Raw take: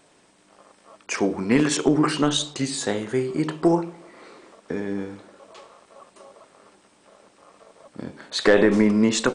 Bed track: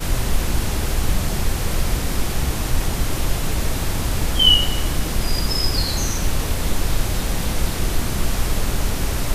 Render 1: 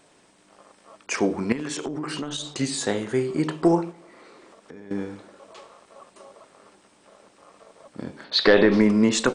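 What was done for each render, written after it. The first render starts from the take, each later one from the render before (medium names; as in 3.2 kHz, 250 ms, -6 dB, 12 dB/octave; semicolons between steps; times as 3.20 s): 1.52–2.51 s: compression 16:1, threshold -26 dBFS; 3.91–4.91 s: compression 2.5:1, threshold -46 dBFS; 8.24–8.81 s: resonant high shelf 5.9 kHz -9.5 dB, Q 3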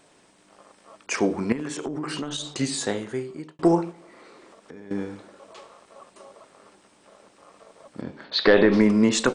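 1.50–2.03 s: dynamic bell 4.1 kHz, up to -6 dB, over -46 dBFS, Q 0.72; 2.75–3.59 s: fade out; 8.01–8.73 s: distance through air 99 m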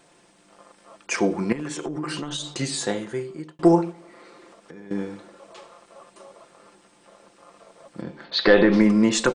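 comb 5.8 ms, depth 45%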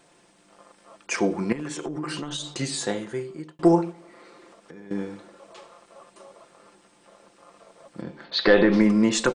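trim -1.5 dB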